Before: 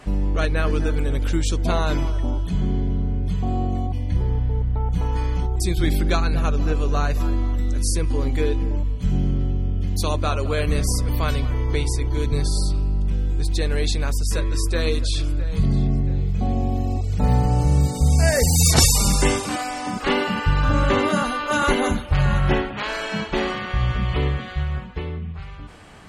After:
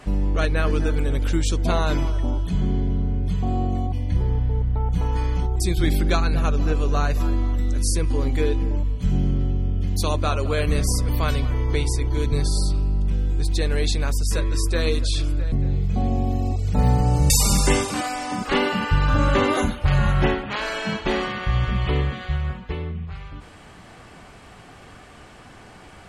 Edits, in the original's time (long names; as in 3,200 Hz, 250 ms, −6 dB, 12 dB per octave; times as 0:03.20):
0:15.52–0:15.97: remove
0:17.75–0:18.85: remove
0:21.12–0:21.84: remove